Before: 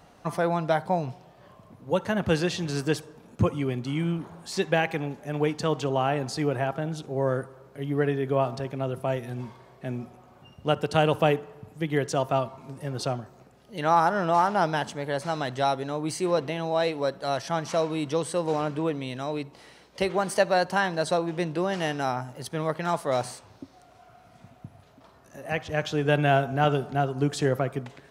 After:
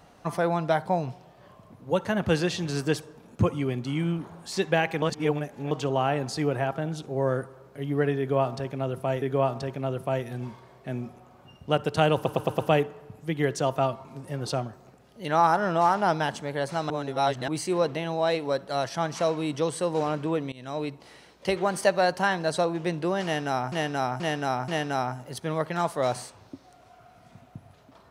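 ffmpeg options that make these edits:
-filter_complex "[0:a]asplit=14[s0][s1][s2][s3][s4][s5][s6][s7][s8][s9][s10][s11][s12][s13];[s0]atrim=end=5.022[s14];[s1]atrim=start=5.018:end=5.712,asetpts=PTS-STARTPTS,areverse[s15];[s2]atrim=start=5.708:end=9.222[s16];[s3]atrim=start=8.188:end=11.232[s17];[s4]atrim=start=11.118:end=11.232[s18];[s5]atrim=start=11.118:end=11.232[s19];[s6]atrim=start=11.118:end=11.232[s20];[s7]atrim=start=11.118:end=15.432[s21];[s8]atrim=start=15.428:end=16.012,asetpts=PTS-STARTPTS,areverse[s22];[s9]atrim=start=16.008:end=19.05,asetpts=PTS-STARTPTS,afade=t=out:st=3.038:d=0.004:c=hsin:silence=0.0944061[s23];[s10]atrim=start=19.05:end=22.252,asetpts=PTS-STARTPTS,afade=t=in:d=0.26:silence=0.0944061[s24];[s11]atrim=start=21.768:end=22.252[s25];[s12]atrim=start=21.768:end=22.252[s26];[s13]atrim=start=21.768[s27];[s14][s15]acrossfade=d=0.004:c1=hsin:c2=hsin[s28];[s28][s16]acrossfade=d=0.004:c1=hsin:c2=hsin[s29];[s29][s17]acrossfade=d=0.004:c1=hsin:c2=hsin[s30];[s30][s18]acrossfade=d=0.004:c1=hsin:c2=hsin[s31];[s31][s19]acrossfade=d=0.004:c1=hsin:c2=hsin[s32];[s32][s20]acrossfade=d=0.004:c1=hsin:c2=hsin[s33];[s33][s21]acrossfade=d=0.004:c1=hsin:c2=hsin[s34];[s34][s22]acrossfade=d=0.004:c1=hsin:c2=hsin[s35];[s23][s24]concat=n=2:v=0:a=1[s36];[s35][s36]acrossfade=d=0.004:c1=hsin:c2=hsin[s37];[s37][s25]acrossfade=d=0.004:c1=hsin:c2=hsin[s38];[s38][s26]acrossfade=d=0.004:c1=hsin:c2=hsin[s39];[s39][s27]acrossfade=d=0.004:c1=hsin:c2=hsin"

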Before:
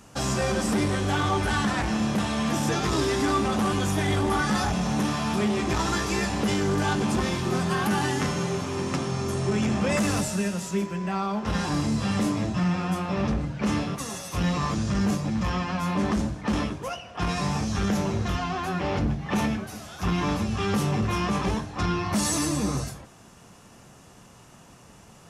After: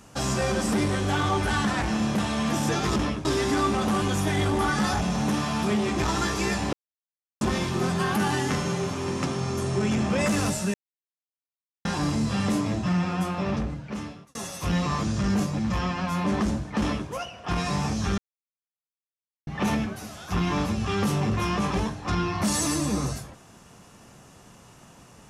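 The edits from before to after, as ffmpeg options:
-filter_complex "[0:a]asplit=10[s0][s1][s2][s3][s4][s5][s6][s7][s8][s9];[s0]atrim=end=2.962[s10];[s1]atrim=start=16.498:end=16.792[s11];[s2]atrim=start=2.958:end=6.44,asetpts=PTS-STARTPTS,afade=t=out:st=3.478:d=0.004:c=hsin[s12];[s3]atrim=start=6.44:end=7.12,asetpts=PTS-STARTPTS,volume=0[s13];[s4]atrim=start=7.12:end=10.45,asetpts=PTS-STARTPTS,afade=t=in:d=0.004:c=hsin,afade=t=out:st=3.326:d=0.004:c=hsin[s14];[s5]atrim=start=10.45:end=11.56,asetpts=PTS-STARTPTS,volume=0[s15];[s6]atrim=start=11.56:end=14.06,asetpts=PTS-STARTPTS,afade=t=in:d=0.004:c=hsin,afade=t=out:st=1.52:d=0.98[s16];[s7]atrim=start=14.06:end=17.89,asetpts=PTS-STARTPTS,afade=t=in:d=0.004:c=hsin,afade=t=out:st=3.826:d=0.004:c=hsin[s17];[s8]atrim=start=17.89:end=19.18,asetpts=PTS-STARTPTS,volume=0[s18];[s9]atrim=start=19.18,asetpts=PTS-STARTPTS,afade=t=in:d=0.004:c=hsin[s19];[s10][s11]acrossfade=d=0.004:c1=hsin:c2=hsin[s20];[s12][s13][s14][s15][s16][s17][s18][s19]concat=n=8:v=0:a=1[s21];[s20][s21]acrossfade=d=0.004:c1=hsin:c2=hsin"

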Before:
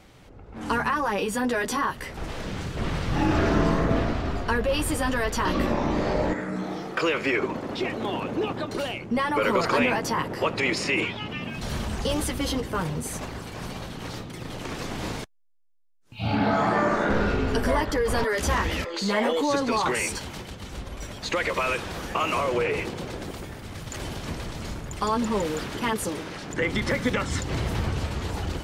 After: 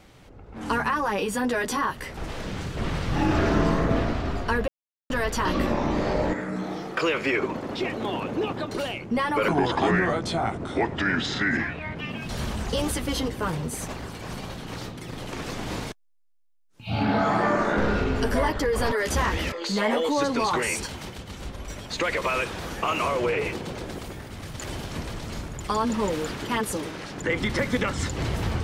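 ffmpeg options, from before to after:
-filter_complex "[0:a]asplit=5[s0][s1][s2][s3][s4];[s0]atrim=end=4.68,asetpts=PTS-STARTPTS,afade=t=out:st=4.676:d=0.004:c=hsin[s5];[s1]atrim=start=4.68:end=5.1,asetpts=PTS-STARTPTS,volume=0[s6];[s2]atrim=start=5.1:end=9.484,asetpts=PTS-STARTPTS,afade=t=in:d=0.004:c=hsin[s7];[s3]atrim=start=9.48:end=11.31,asetpts=PTS-STARTPTS,asetrate=32193,aresample=44100,atrim=end_sample=110552,asetpts=PTS-STARTPTS[s8];[s4]atrim=start=11.306[s9];[s5][s6][s7]concat=n=3:v=0:a=1[s10];[s10][s8]acrossfade=d=0.004:c1=hsin:c2=hsin[s11];[s11][s9]acrossfade=d=0.004:c1=hsin:c2=hsin"

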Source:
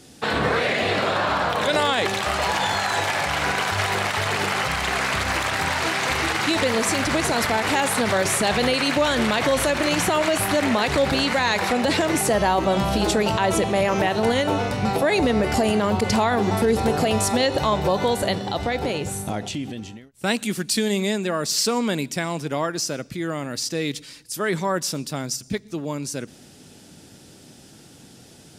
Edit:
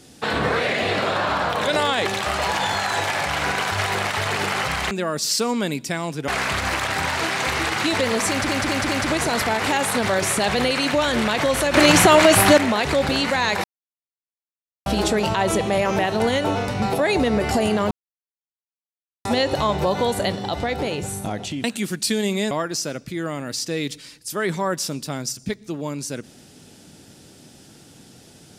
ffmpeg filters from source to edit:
-filter_complex "[0:a]asplit=14[s0][s1][s2][s3][s4][s5][s6][s7][s8][s9][s10][s11][s12][s13];[s0]atrim=end=4.912[s14];[s1]atrim=start=21.178:end=22.552[s15];[s2]atrim=start=4.908:end=7.122[s16];[s3]atrim=start=6.918:end=7.122[s17];[s4]atrim=start=6.918:end=7.122[s18];[s5]atrim=start=6.918:end=9.772[s19];[s6]atrim=start=9.768:end=10.612,asetpts=PTS-STARTPTS,volume=2.51[s20];[s7]atrim=start=10.608:end=11.67,asetpts=PTS-STARTPTS,afade=t=out:st=1.058:d=0.004:c=hsin[s21];[s8]atrim=start=11.67:end=12.89,asetpts=PTS-STARTPTS,volume=0[s22];[s9]atrim=start=12.89:end=15.94,asetpts=PTS-STARTPTS,afade=t=in:d=0.004:c=hsin,afade=t=out:st=3.046:d=0.004:c=hsin[s23];[s10]atrim=start=15.94:end=17.28,asetpts=PTS-STARTPTS,volume=0[s24];[s11]atrim=start=17.28:end=19.672,asetpts=PTS-STARTPTS,afade=t=in:d=0.004:c=hsin[s25];[s12]atrim=start=20.308:end=21.182[s26];[s13]atrim=start=22.548[s27];[s14][s15]acrossfade=d=0.004:c1=hsin:c2=hsin[s28];[s28][s16]acrossfade=d=0.004:c1=hsin:c2=hsin[s29];[s29][s17]acrossfade=d=0.004:c1=hsin:c2=hsin[s30];[s30][s18]acrossfade=d=0.004:c1=hsin:c2=hsin[s31];[s31][s19]acrossfade=d=0.004:c1=hsin:c2=hsin[s32];[s32][s20]acrossfade=d=0.004:c1=hsin:c2=hsin[s33];[s21][s22][s23][s24][s25]concat=n=5:v=0:a=1[s34];[s33][s34]acrossfade=d=0.004:c1=hsin:c2=hsin[s35];[s35][s26]acrossfade=d=0.004:c1=hsin:c2=hsin[s36];[s36][s27]acrossfade=d=0.004:c1=hsin:c2=hsin"

